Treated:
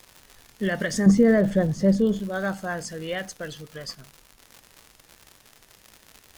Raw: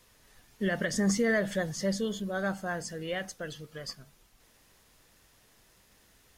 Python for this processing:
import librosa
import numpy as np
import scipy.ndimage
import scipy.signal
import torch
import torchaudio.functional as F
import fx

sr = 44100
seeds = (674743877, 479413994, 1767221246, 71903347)

y = fx.tilt_shelf(x, sr, db=9.0, hz=930.0, at=(1.06, 2.2))
y = fx.dmg_crackle(y, sr, seeds[0], per_s=130.0, level_db=-37.0)
y = y * librosa.db_to_amplitude(4.0)